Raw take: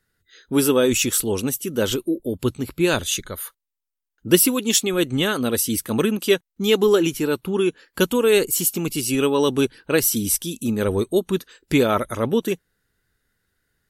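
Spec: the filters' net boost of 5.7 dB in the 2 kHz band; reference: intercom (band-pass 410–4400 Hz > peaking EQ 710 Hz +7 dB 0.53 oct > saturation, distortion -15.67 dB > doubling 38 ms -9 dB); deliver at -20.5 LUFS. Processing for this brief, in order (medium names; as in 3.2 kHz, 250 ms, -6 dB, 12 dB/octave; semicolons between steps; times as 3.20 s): band-pass 410–4400 Hz; peaking EQ 710 Hz +7 dB 0.53 oct; peaking EQ 2 kHz +8 dB; saturation -10.5 dBFS; doubling 38 ms -9 dB; trim +3 dB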